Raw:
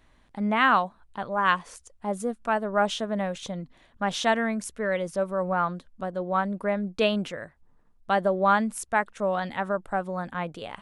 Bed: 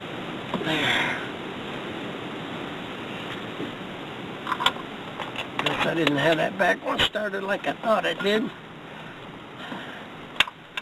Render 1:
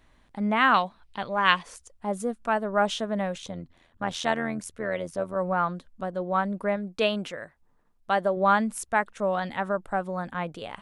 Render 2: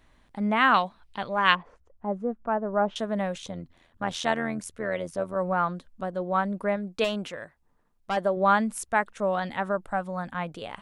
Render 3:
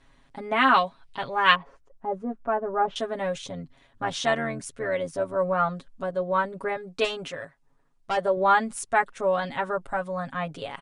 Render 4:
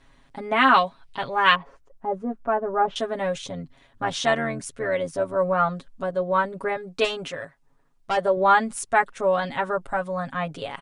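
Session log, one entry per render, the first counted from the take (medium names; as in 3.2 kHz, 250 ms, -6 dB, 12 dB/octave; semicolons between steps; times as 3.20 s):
0.74–1.63 s: high-order bell 3.3 kHz +8.5 dB; 3.42–5.36 s: AM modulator 84 Hz, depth 50%; 6.76–8.37 s: bass shelf 240 Hz -6.5 dB
1.55–2.96 s: low-pass 1.1 kHz; 7.04–8.17 s: valve stage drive 21 dB, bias 0.25; 9.91–10.51 s: peaking EQ 410 Hz -10 dB 0.4 oct
elliptic low-pass 10 kHz, stop band 40 dB; comb 7.3 ms, depth 92%
trim +2.5 dB; peak limiter -3 dBFS, peak gain reduction 3 dB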